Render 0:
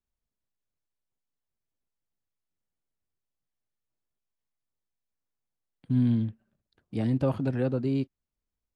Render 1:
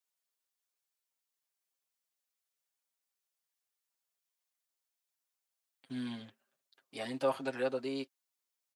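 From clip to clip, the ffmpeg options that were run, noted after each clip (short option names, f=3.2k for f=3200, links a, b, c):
-af "highpass=610,highshelf=f=3.1k:g=8,aecho=1:1:7.5:0.79,volume=-2dB"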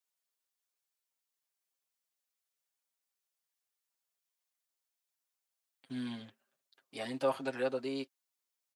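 -af anull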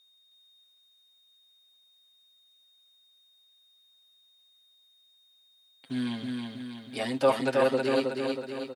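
-af "aeval=exprs='val(0)+0.000355*sin(2*PI*3700*n/s)':c=same,aecho=1:1:319|638|957|1276|1595|1914|2233:0.668|0.354|0.188|0.0995|0.0527|0.0279|0.0148,volume=8dB"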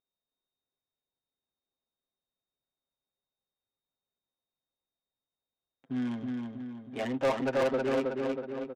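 -af "aresample=8000,aresample=44100,asoftclip=type=tanh:threshold=-21.5dB,adynamicsmooth=sensitivity=5:basefreq=640"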